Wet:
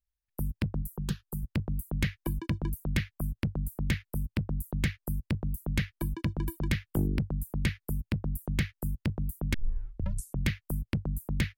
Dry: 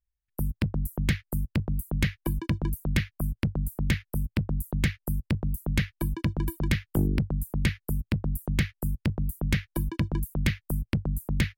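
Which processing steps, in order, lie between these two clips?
0.82–1.43 fixed phaser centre 420 Hz, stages 8; 9.54 tape start 0.93 s; gain -3.5 dB

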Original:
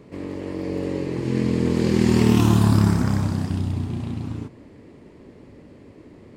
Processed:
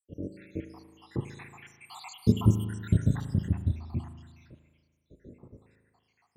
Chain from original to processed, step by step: random spectral dropouts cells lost 84%; bell 77 Hz +8 dB 2.1 oct; spring tank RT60 1.5 s, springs 37 ms, chirp 60 ms, DRR 9 dB; gain -5.5 dB

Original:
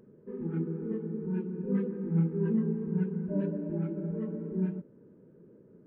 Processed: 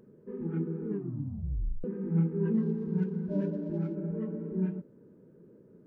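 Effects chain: 0.87 tape stop 0.97 s; 2.54–3.95 median filter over 15 samples

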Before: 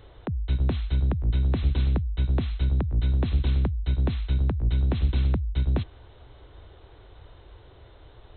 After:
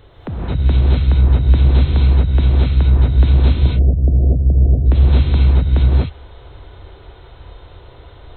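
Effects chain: 3.52–4.86 steep low-pass 720 Hz 96 dB/oct; non-linear reverb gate 0.28 s rising, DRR -5.5 dB; gain +4 dB

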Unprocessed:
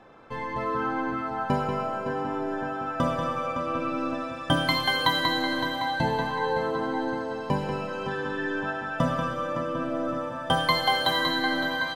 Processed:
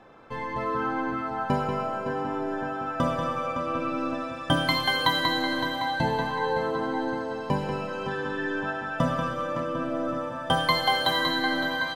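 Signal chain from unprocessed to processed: 9.26–9.8 hard clip -21.5 dBFS, distortion -43 dB

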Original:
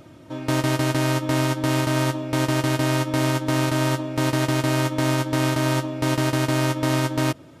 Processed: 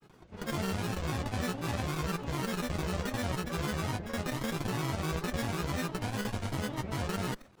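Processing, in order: minimum comb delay 1 ms; grains, pitch spread up and down by 12 st; gain -8.5 dB

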